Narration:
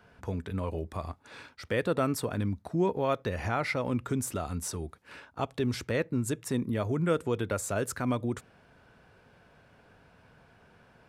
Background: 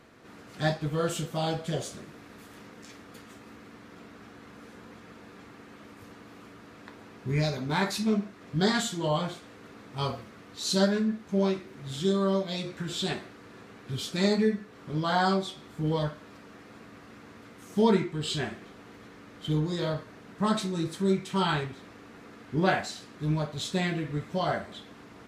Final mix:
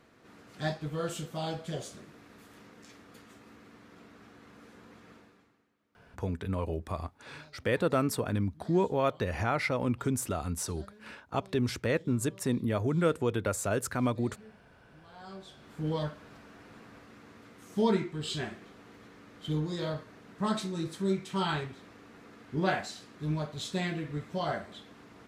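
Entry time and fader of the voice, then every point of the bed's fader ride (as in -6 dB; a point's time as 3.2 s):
5.95 s, +0.5 dB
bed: 5.15 s -5.5 dB
5.76 s -29 dB
15.11 s -29 dB
15.72 s -4 dB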